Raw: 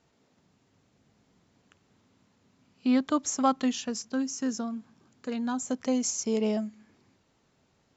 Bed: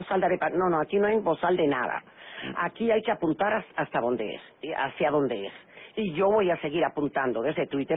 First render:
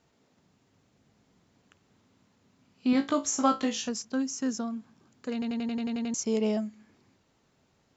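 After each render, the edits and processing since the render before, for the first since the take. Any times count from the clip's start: 2.91–3.89 flutter echo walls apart 3.1 m, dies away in 0.22 s; 5.33 stutter in place 0.09 s, 9 plays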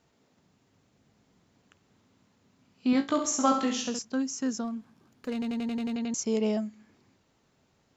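3.07–3.99 flutter echo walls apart 11.5 m, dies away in 0.55 s; 4.64–5.94 running maximum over 3 samples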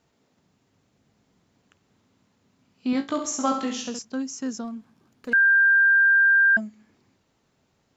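5.33–6.57 bleep 1590 Hz -14 dBFS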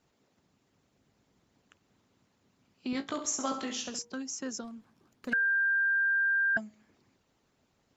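de-hum 158.6 Hz, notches 6; harmonic-percussive split harmonic -10 dB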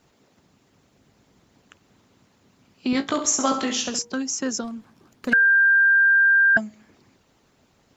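gain +11 dB

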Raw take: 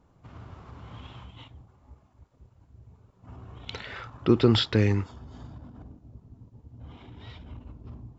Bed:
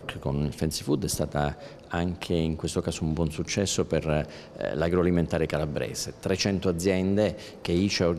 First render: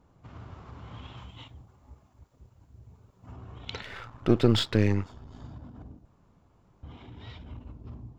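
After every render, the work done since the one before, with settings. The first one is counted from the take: 1.17–3.32 high shelf 6400 Hz +9 dB; 3.82–5.43 half-wave gain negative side -7 dB; 6.05–6.83 room tone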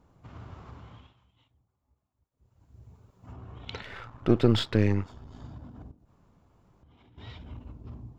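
0.68–2.82 dip -21 dB, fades 0.47 s linear; 3.33–5.08 high shelf 4000 Hz -6 dB; 5.91–7.18 compressor 12:1, threshold -55 dBFS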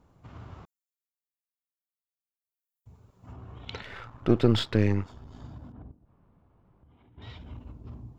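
0.65–2.86 inverse Chebyshev high-pass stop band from 2200 Hz, stop band 80 dB; 5.72–7.22 air absorption 390 m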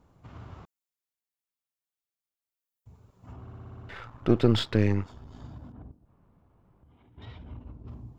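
3.41 stutter in place 0.06 s, 8 plays; 7.25–7.88 high shelf 3300 Hz -12 dB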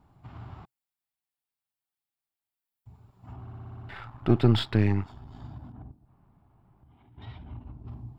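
thirty-one-band EQ 125 Hz +5 dB, 500 Hz -10 dB, 800 Hz +6 dB, 6300 Hz -11 dB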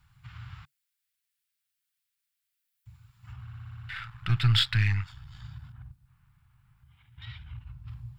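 EQ curve 140 Hz 0 dB, 240 Hz -22 dB, 510 Hz -29 dB, 1500 Hz +6 dB, 2400 Hz +8 dB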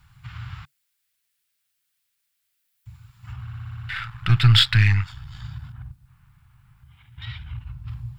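gain +8 dB

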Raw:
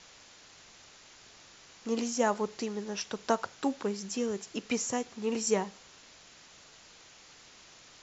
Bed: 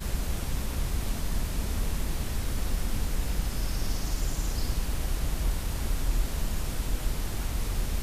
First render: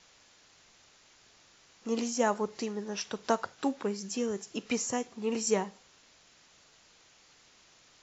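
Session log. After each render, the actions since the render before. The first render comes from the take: noise print and reduce 6 dB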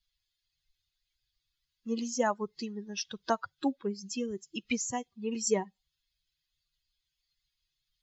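per-bin expansion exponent 2; in parallel at -1 dB: compressor, threshold -39 dBFS, peak gain reduction 15 dB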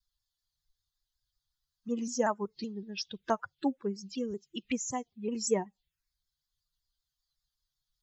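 envelope phaser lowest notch 410 Hz, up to 4300 Hz, full sweep at -29.5 dBFS; shaped vibrato saw down 5.3 Hz, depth 100 cents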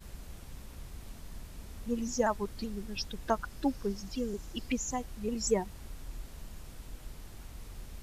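add bed -16 dB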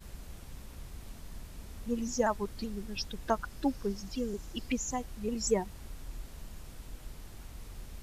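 nothing audible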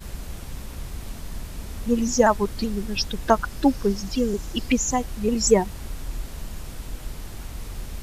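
gain +11.5 dB

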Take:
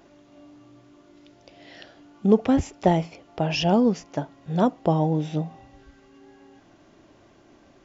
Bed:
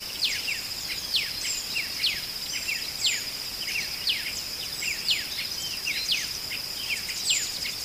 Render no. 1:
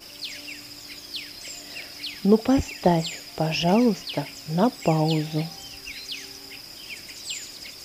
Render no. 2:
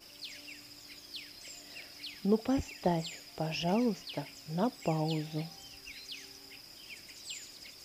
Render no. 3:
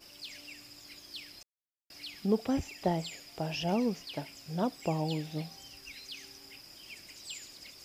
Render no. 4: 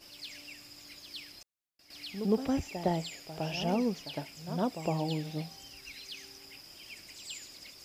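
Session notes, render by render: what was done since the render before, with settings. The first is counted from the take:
add bed -8.5 dB
gain -10.5 dB
1.43–1.9 mute
reverse echo 0.11 s -10.5 dB

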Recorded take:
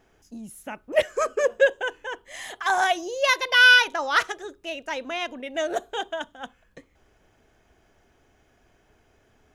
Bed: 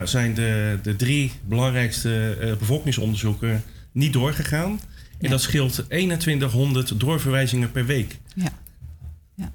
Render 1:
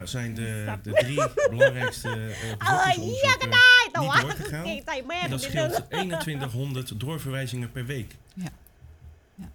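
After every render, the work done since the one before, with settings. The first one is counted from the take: add bed -10 dB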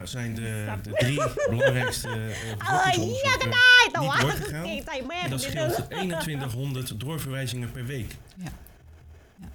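transient shaper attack -8 dB, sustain +7 dB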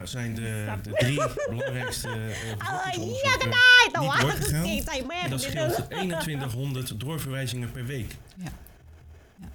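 1.26–3.23 compressor, threshold -26 dBFS; 4.41–5.02 tone controls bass +9 dB, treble +12 dB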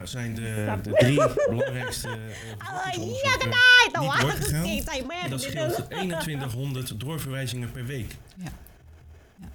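0.57–1.64 bell 410 Hz +7.5 dB 3 oct; 2.15–2.76 gain -5 dB; 5.15–5.86 notch comb 810 Hz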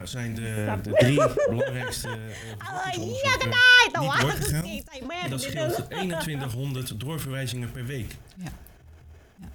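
4.61–5.02 expander -22 dBFS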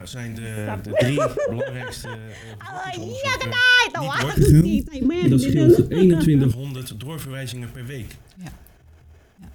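1.54–3.11 high shelf 6000 Hz -6 dB; 4.37–6.52 resonant low shelf 490 Hz +13 dB, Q 3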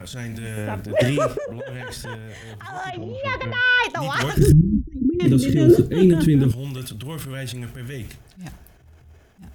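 1.38–2.01 compressor, threshold -28 dBFS; 2.9–3.84 air absorption 330 m; 4.52–5.2 formant sharpening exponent 3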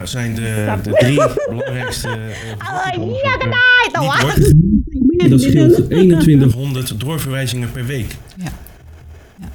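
in parallel at +2.5 dB: compressor 4:1, threshold -26 dBFS, peak gain reduction 15.5 dB; on the sum: maximiser +4.5 dB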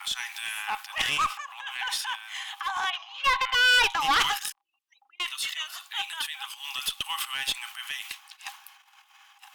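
rippled Chebyshev high-pass 780 Hz, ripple 9 dB; one-sided clip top -24 dBFS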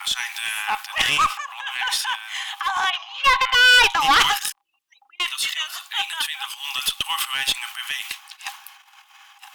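gain +7 dB

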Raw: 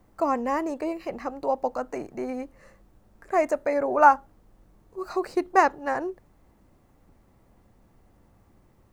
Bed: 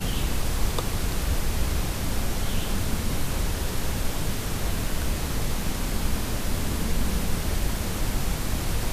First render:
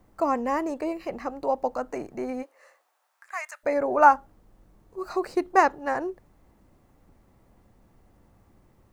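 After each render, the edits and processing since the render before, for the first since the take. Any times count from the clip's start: 2.42–3.63 HPF 420 Hz -> 1500 Hz 24 dB/oct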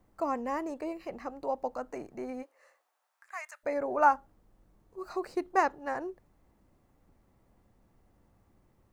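gain -7 dB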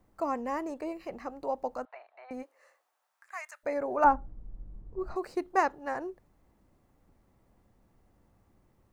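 1.85–2.31 Chebyshev band-pass 640–3900 Hz, order 4; 4.04–5.16 tilt -4.5 dB/oct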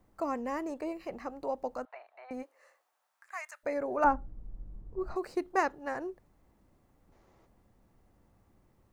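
7.12–7.46 spectral gain 310–7300 Hz +7 dB; dynamic EQ 870 Hz, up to -4 dB, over -38 dBFS, Q 1.4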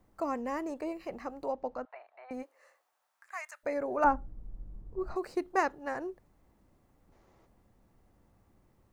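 1.52–2.3 air absorption 140 m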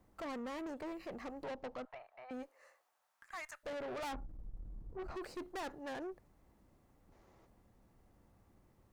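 tube stage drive 40 dB, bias 0.4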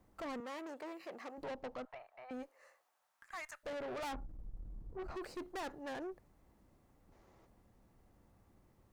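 0.4–1.38 Bessel high-pass 400 Hz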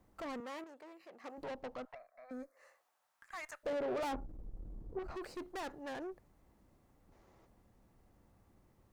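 0.64–1.24 gain -8 dB; 1.95–2.57 fixed phaser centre 580 Hz, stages 8; 3.43–4.99 bell 410 Hz +7.5 dB 2 oct

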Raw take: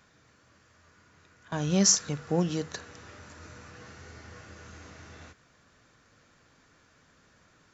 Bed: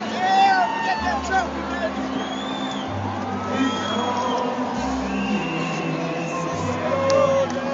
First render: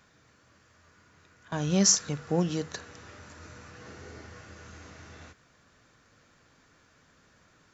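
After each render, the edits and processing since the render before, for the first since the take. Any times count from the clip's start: 3.85–4.26 bell 380 Hz +6.5 dB 1.6 oct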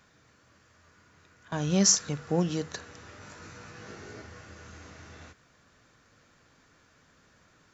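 3.19–4.22 doubler 19 ms -2 dB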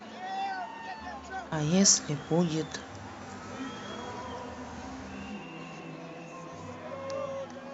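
add bed -18 dB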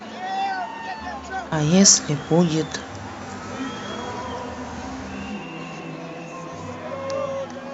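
gain +9 dB; limiter -1 dBFS, peak gain reduction 1.5 dB

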